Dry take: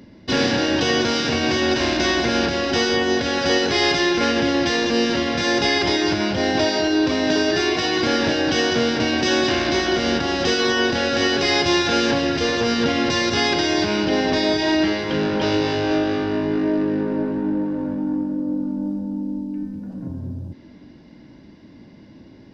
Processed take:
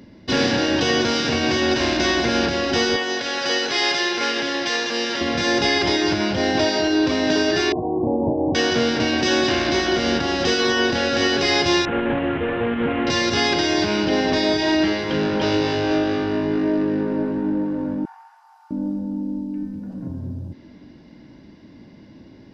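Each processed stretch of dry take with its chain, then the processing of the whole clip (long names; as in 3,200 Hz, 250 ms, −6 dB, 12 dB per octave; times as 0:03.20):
0:02.96–0:05.21: high-pass filter 750 Hz 6 dB per octave + single-tap delay 493 ms −11.5 dB
0:07.72–0:08.55: Butterworth low-pass 990 Hz 96 dB per octave + dynamic equaliser 110 Hz, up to +3 dB, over −36 dBFS, Q 1.3
0:11.85–0:13.07: variable-slope delta modulation 16 kbit/s + highs frequency-modulated by the lows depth 0.11 ms
0:18.05–0:18.71: linear-phase brick-wall high-pass 670 Hz + parametric band 3,600 Hz −4 dB 0.4 octaves
whole clip: no processing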